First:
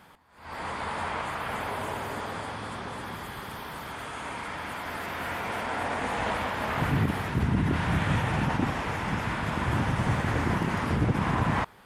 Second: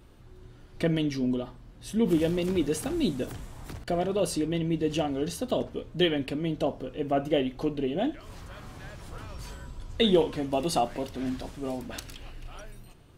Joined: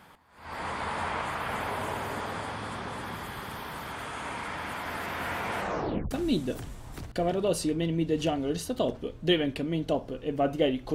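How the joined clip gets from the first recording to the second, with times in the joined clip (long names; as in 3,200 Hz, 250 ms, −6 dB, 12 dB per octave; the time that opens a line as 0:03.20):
first
0:05.57: tape stop 0.54 s
0:06.11: continue with second from 0:02.83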